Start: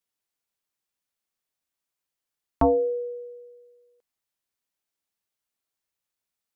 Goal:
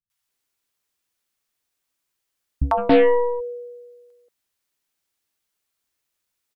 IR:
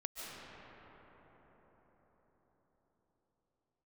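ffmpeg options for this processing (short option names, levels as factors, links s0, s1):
-filter_complex "[0:a]acrossover=split=170|710[s0][s1][s2];[s2]adelay=100[s3];[s1]adelay=280[s4];[s0][s4][s3]amix=inputs=3:normalize=0,asplit=3[s5][s6][s7];[s5]afade=t=out:st=2.77:d=0.02[s8];[s6]aeval=exprs='0.188*(cos(1*acos(clip(val(0)/0.188,-1,1)))-cos(1*PI/2))+0.0237*(cos(8*acos(clip(val(0)/0.188,-1,1)))-cos(8*PI/2))':c=same,afade=t=in:st=2.77:d=0.02,afade=t=out:st=3.39:d=0.02[s9];[s7]afade=t=in:st=3.39:d=0.02[s10];[s8][s9][s10]amix=inputs=3:normalize=0,volume=2.51"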